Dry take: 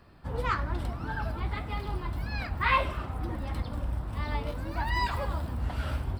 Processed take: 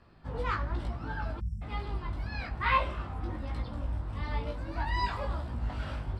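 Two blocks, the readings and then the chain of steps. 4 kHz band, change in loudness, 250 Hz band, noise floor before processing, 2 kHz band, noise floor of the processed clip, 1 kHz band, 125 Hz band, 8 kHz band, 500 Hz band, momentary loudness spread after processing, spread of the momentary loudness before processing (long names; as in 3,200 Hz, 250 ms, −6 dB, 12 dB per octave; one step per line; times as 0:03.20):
−3.0 dB, −2.5 dB, −3.0 dB, −39 dBFS, −3.0 dB, −42 dBFS, −2.0 dB, −2.5 dB, can't be measured, −2.5 dB, 9 LU, 8 LU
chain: low-pass filter 6,800 Hz 12 dB per octave
chorus effect 1.1 Hz, delay 17 ms, depth 3.5 ms
time-frequency box erased 0:01.40–0:01.62, 230–5,200 Hz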